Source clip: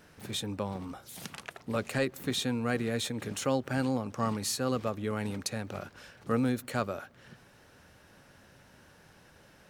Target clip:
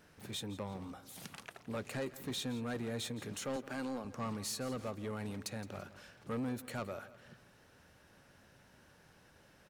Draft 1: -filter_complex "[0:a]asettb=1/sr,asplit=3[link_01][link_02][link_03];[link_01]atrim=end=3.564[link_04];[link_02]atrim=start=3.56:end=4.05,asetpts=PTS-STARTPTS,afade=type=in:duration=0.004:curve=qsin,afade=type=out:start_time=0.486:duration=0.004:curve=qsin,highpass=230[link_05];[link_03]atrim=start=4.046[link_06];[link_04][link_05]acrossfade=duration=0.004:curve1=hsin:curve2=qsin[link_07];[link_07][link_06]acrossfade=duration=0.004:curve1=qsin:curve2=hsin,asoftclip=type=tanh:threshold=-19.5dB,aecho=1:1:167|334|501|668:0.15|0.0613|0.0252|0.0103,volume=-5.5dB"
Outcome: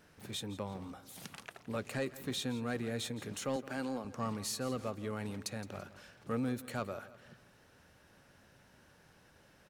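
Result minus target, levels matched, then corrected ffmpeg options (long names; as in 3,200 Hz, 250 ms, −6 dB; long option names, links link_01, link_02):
soft clipping: distortion −9 dB
-filter_complex "[0:a]asettb=1/sr,asplit=3[link_01][link_02][link_03];[link_01]atrim=end=3.564[link_04];[link_02]atrim=start=3.56:end=4.05,asetpts=PTS-STARTPTS,afade=type=in:duration=0.004:curve=qsin,afade=type=out:start_time=0.486:duration=0.004:curve=qsin,highpass=230[link_05];[link_03]atrim=start=4.046[link_06];[link_04][link_05]acrossfade=duration=0.004:curve1=hsin:curve2=qsin[link_07];[link_07][link_06]acrossfade=duration=0.004:curve1=qsin:curve2=hsin,asoftclip=type=tanh:threshold=-27dB,aecho=1:1:167|334|501|668:0.15|0.0613|0.0252|0.0103,volume=-5.5dB"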